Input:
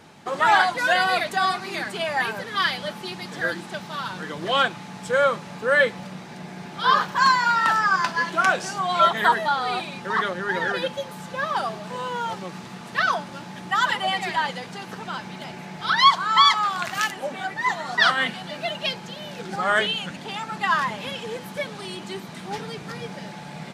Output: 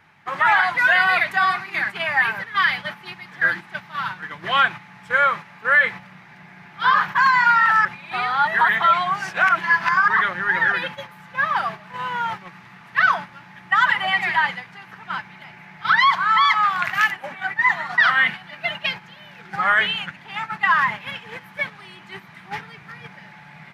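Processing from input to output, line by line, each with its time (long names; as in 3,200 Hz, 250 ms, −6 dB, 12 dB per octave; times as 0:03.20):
0:05.13–0:05.91: high-pass filter 180 Hz 6 dB per octave
0:07.85–0:10.08: reverse
whole clip: noise gate −31 dBFS, range −8 dB; octave-band graphic EQ 125/250/500/1,000/2,000/4,000/8,000 Hz +3/−7/−9/+3/+10/−4/−11 dB; boost into a limiter +7.5 dB; level −6.5 dB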